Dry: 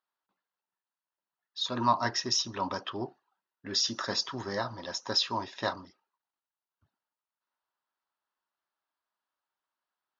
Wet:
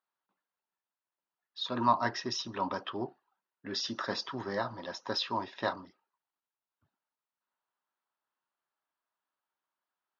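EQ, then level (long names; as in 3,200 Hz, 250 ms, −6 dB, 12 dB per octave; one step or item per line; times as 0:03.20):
band-pass filter 120–6,100 Hz
high-frequency loss of the air 130 metres
0.0 dB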